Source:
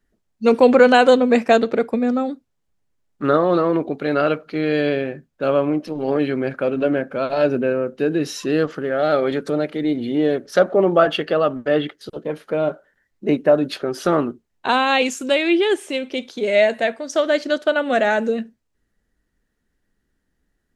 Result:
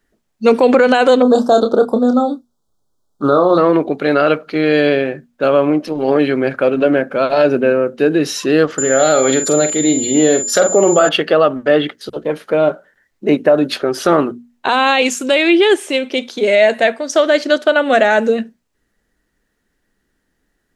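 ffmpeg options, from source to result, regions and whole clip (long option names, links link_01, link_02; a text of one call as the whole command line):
ffmpeg -i in.wav -filter_complex "[0:a]asettb=1/sr,asplit=3[link_01][link_02][link_03];[link_01]atrim=end=1.224[link_04];[link_02]atrim=start=1.22:end=3.58,asetpts=PTS-STARTPTS,afade=type=in:duration=0.004:curve=qsin,afade=type=out:start_time=2.356:duration=0.004:curve=qsin,asuperstop=centerf=2200:order=8:qfactor=1.1,asplit=2[link_05][link_06];[link_06]adelay=28,volume=-7.5dB[link_07];[link_05][link_07]amix=inputs=2:normalize=0,atrim=end_sample=104076[link_08];[link_03]atrim=start=3.576[link_09];[link_04][link_08]acrossfade=duration=0.004:curve1=hsin:curve2=qsin[link_10];[link_10][link_09]acrossfade=duration=0.004:curve1=qsin:curve2=hsin,asettb=1/sr,asplit=3[link_11][link_12][link_13];[link_11]atrim=end=8.784[link_14];[link_12]atrim=start=8.78:end=11.09,asetpts=PTS-STARTPTS,afade=type=in:duration=0.004:curve=qsin,afade=type=out:start_time=2.306:duration=0.004:curve=qsin,bass=frequency=250:gain=1,treble=frequency=4000:gain=9,aeval=exprs='val(0)+0.0631*sin(2*PI*7100*n/s)':channel_layout=same,asplit=2[link_15][link_16];[link_16]adelay=45,volume=-9dB[link_17];[link_15][link_17]amix=inputs=2:normalize=0,atrim=end_sample=101871[link_18];[link_13]atrim=start=11.086[link_19];[link_14][link_18]acrossfade=duration=0.004:curve1=hsin:curve2=qsin[link_20];[link_20][link_19]acrossfade=duration=0.004:curve1=qsin:curve2=hsin,lowshelf=frequency=190:gain=-7,bandreject=frequency=60:width_type=h:width=6,bandreject=frequency=120:width_type=h:width=6,bandreject=frequency=180:width_type=h:width=6,bandreject=frequency=240:width_type=h:width=6,alimiter=level_in=9dB:limit=-1dB:release=50:level=0:latency=1,volume=-1dB" out.wav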